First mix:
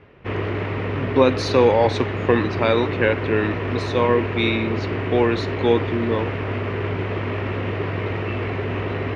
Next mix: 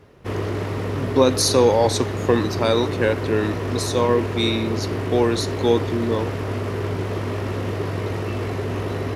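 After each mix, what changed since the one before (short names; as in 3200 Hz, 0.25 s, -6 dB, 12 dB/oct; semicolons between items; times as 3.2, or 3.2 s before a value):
master: remove synth low-pass 2500 Hz, resonance Q 2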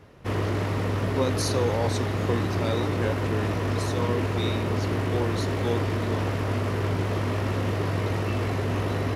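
speech -11.0 dB; background: add bell 400 Hz -5 dB 0.42 oct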